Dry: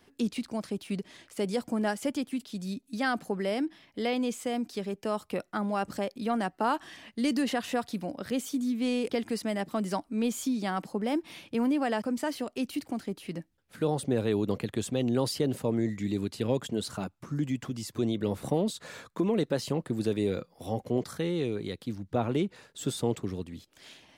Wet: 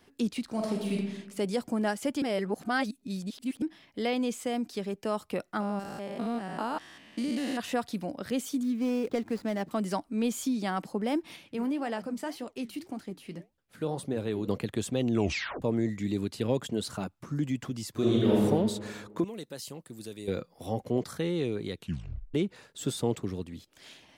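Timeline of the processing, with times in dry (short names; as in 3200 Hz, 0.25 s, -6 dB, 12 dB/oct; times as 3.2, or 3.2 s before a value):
0.45–0.94 reverb throw, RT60 1 s, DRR -1.5 dB
2.22–3.62 reverse
5.6–7.6 stepped spectrum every 0.2 s
8.63–9.71 median filter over 15 samples
11.36–14.48 flange 1.8 Hz, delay 3.8 ms, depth 9.6 ms, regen -75%
15.11 tape stop 0.51 s
17.91–18.41 reverb throw, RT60 1.5 s, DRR -5.5 dB
19.24–20.28 pre-emphasis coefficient 0.8
21.75 tape stop 0.59 s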